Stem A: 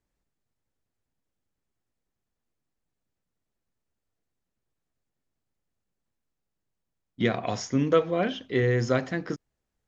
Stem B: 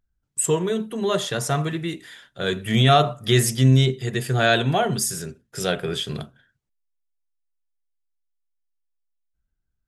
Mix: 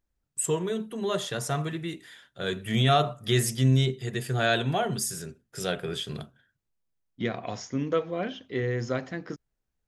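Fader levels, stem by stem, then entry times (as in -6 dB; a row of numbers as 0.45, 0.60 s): -5.0, -6.0 dB; 0.00, 0.00 s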